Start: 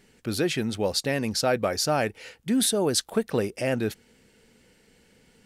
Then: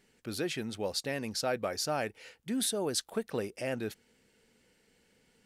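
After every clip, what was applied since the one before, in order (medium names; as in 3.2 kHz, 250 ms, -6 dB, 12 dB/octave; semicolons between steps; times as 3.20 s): bass shelf 230 Hz -4.5 dB; trim -7.5 dB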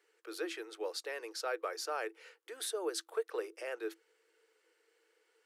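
rippled Chebyshev high-pass 320 Hz, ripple 9 dB; trim +1 dB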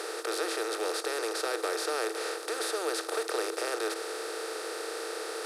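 spectral levelling over time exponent 0.2; trim -1.5 dB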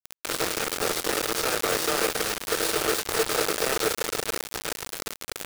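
chorus 0.65 Hz, delay 20 ms, depth 2.8 ms; echo with a slow build-up 106 ms, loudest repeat 5, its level -13 dB; bit crusher 5-bit; trim +6.5 dB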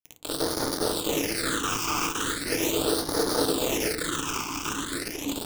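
ever faster or slower copies 93 ms, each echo -4 st, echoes 3, each echo -6 dB; phase shifter stages 8, 0.39 Hz, lowest notch 530–2600 Hz; FDN reverb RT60 0.42 s, low-frequency decay 1.3×, high-frequency decay 0.35×, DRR 7.5 dB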